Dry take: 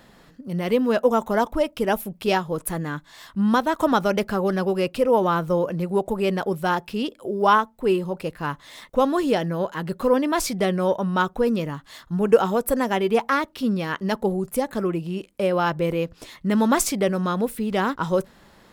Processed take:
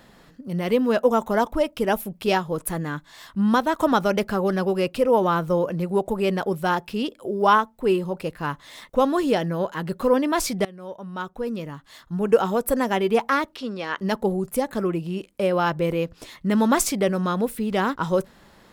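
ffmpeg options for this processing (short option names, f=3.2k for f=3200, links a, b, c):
-filter_complex "[0:a]asettb=1/sr,asplit=3[a][b][c];[a]atrim=end=13.564[d];[b]atrim=start=13.56:end=13.98,asetpts=PTS-STARTPTS,afade=t=in:d=0.004:c=qsin,afade=t=out:st=0.416:d=0.004:c=qsin,acrossover=split=330 7900:gain=0.2 1 0.0794[e][f][g];[e][f][g]amix=inputs=3:normalize=0[h];[c]atrim=start=13.976[i];[d][h]acrossfade=d=0.004:c1=hsin:c2=qsin[j];[j][i]acrossfade=d=0.004:c1=qsin:c2=hsin,asplit=2[k][l];[k]atrim=end=10.65,asetpts=PTS-STARTPTS,afade=t=out:st=10.646:d=0.004:c=hsin:silence=0.0794328[m];[l]atrim=start=10.65,asetpts=PTS-STARTPTS,afade=t=in:d=2.09:silence=0.0794328[n];[m][n]concat=n=2:v=0:a=1"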